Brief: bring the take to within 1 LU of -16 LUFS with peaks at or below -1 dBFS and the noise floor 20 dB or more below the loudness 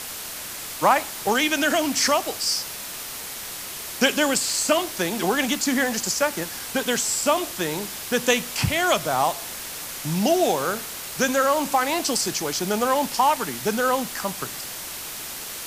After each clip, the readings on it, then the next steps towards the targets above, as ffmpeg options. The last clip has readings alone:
noise floor -35 dBFS; noise floor target -43 dBFS; loudness -23.0 LUFS; peak -4.5 dBFS; loudness target -16.0 LUFS
-> -af "afftdn=nr=8:nf=-35"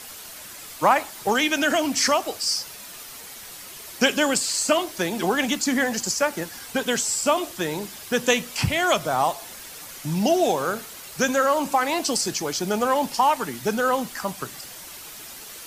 noise floor -40 dBFS; noise floor target -43 dBFS
-> -af "afftdn=nr=6:nf=-40"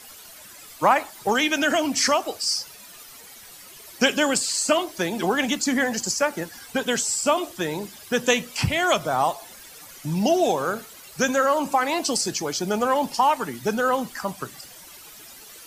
noise floor -45 dBFS; loudness -23.0 LUFS; peak -5.0 dBFS; loudness target -16.0 LUFS
-> -af "volume=7dB,alimiter=limit=-1dB:level=0:latency=1"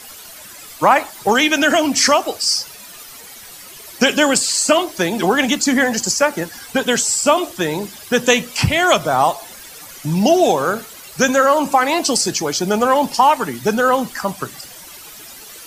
loudness -16.0 LUFS; peak -1.0 dBFS; noise floor -38 dBFS

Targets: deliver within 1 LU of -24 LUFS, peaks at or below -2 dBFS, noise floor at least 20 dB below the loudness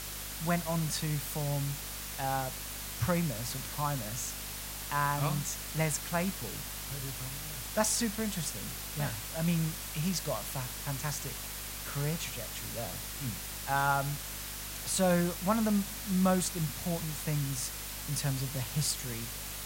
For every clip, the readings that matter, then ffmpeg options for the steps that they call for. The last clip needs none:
hum 50 Hz; harmonics up to 250 Hz; hum level -45 dBFS; noise floor -41 dBFS; noise floor target -53 dBFS; loudness -33.0 LUFS; peak -13.0 dBFS; loudness target -24.0 LUFS
-> -af "bandreject=f=50:t=h:w=6,bandreject=f=100:t=h:w=6,bandreject=f=150:t=h:w=6,bandreject=f=200:t=h:w=6,bandreject=f=250:t=h:w=6"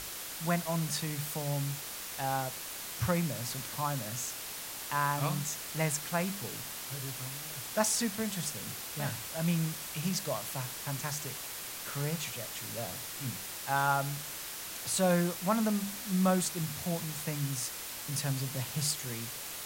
hum none; noise floor -42 dBFS; noise floor target -54 dBFS
-> -af "afftdn=nr=12:nf=-42"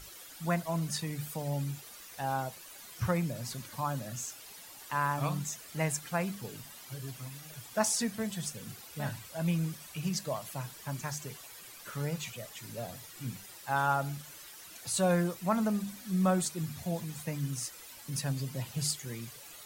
noise floor -50 dBFS; noise floor target -55 dBFS
-> -af "afftdn=nr=6:nf=-50"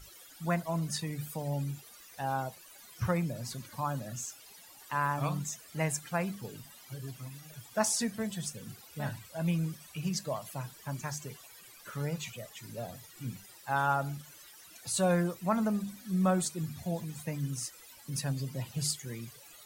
noise floor -54 dBFS; noise floor target -55 dBFS
-> -af "afftdn=nr=6:nf=-54"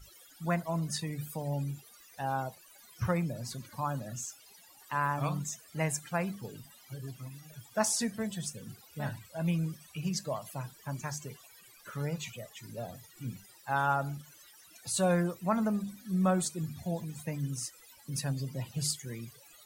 noise floor -58 dBFS; loudness -34.5 LUFS; peak -13.0 dBFS; loudness target -24.0 LUFS
-> -af "volume=10.5dB"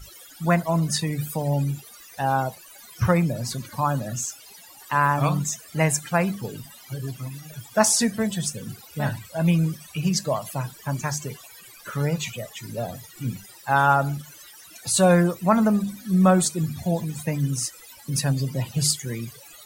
loudness -24.0 LUFS; peak -2.5 dBFS; noise floor -47 dBFS

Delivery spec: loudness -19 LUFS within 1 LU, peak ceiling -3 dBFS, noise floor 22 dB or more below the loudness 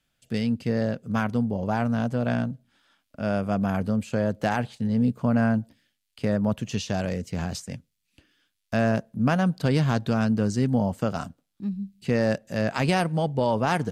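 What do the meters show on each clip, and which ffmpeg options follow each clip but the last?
loudness -26.0 LUFS; peak -12.0 dBFS; loudness target -19.0 LUFS
-> -af "volume=7dB"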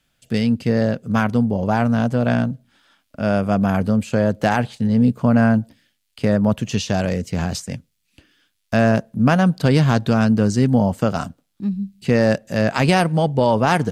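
loudness -19.0 LUFS; peak -5.0 dBFS; noise floor -71 dBFS

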